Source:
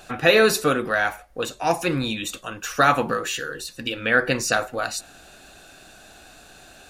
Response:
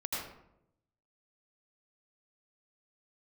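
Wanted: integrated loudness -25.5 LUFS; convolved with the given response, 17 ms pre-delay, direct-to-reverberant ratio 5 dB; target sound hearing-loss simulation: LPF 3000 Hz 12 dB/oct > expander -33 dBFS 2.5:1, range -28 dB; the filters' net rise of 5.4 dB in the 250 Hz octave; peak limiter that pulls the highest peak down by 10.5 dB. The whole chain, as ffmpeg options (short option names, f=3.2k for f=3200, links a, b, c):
-filter_complex "[0:a]equalizer=f=250:t=o:g=6.5,alimiter=limit=-14dB:level=0:latency=1,asplit=2[a][b];[1:a]atrim=start_sample=2205,adelay=17[c];[b][c]afir=irnorm=-1:irlink=0,volume=-9dB[d];[a][d]amix=inputs=2:normalize=0,lowpass=3k,agate=range=-28dB:threshold=-33dB:ratio=2.5"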